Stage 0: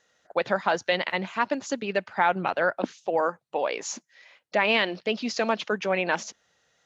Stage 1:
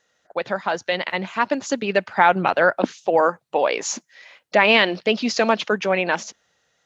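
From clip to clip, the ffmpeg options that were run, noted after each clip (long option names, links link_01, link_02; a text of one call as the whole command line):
ffmpeg -i in.wav -af "dynaudnorm=framelen=310:gausssize=9:maxgain=11.5dB" out.wav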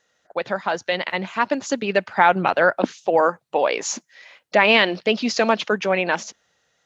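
ffmpeg -i in.wav -af anull out.wav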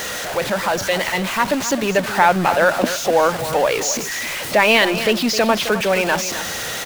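ffmpeg -i in.wav -af "aeval=exprs='val(0)+0.5*0.0944*sgn(val(0))':channel_layout=same,aecho=1:1:263:0.266" out.wav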